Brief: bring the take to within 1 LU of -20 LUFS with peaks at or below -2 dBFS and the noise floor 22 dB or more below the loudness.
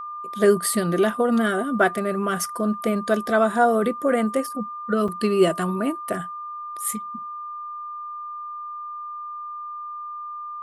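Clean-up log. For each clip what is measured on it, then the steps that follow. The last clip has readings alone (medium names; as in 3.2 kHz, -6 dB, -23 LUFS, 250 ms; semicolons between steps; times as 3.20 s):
dropouts 1; longest dropout 5.1 ms; steady tone 1.2 kHz; tone level -31 dBFS; loudness -24.0 LUFS; peak level -5.5 dBFS; loudness target -20.0 LUFS
-> interpolate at 5.08 s, 5.1 ms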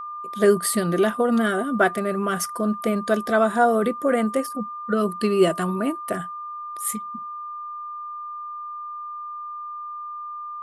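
dropouts 0; steady tone 1.2 kHz; tone level -31 dBFS
-> band-stop 1.2 kHz, Q 30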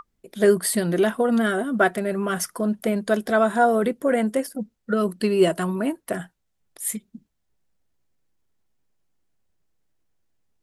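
steady tone not found; loudness -22.5 LUFS; peak level -6.0 dBFS; loudness target -20.0 LUFS
-> trim +2.5 dB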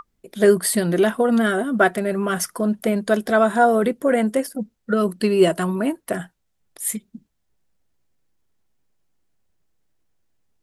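loudness -20.0 LUFS; peak level -3.5 dBFS; noise floor -71 dBFS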